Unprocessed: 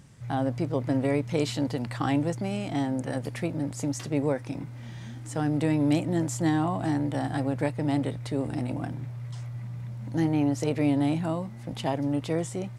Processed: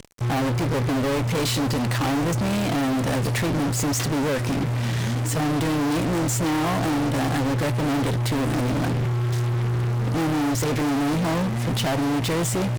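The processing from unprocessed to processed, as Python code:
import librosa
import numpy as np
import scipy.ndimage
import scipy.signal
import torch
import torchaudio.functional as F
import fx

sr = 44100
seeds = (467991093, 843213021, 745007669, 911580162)

p1 = fx.rider(x, sr, range_db=4, speed_s=0.5)
p2 = x + (p1 * 10.0 ** (1.5 / 20.0))
p3 = fx.fuzz(p2, sr, gain_db=37.0, gate_db=-38.0)
y = p3 * 10.0 ** (-8.0 / 20.0)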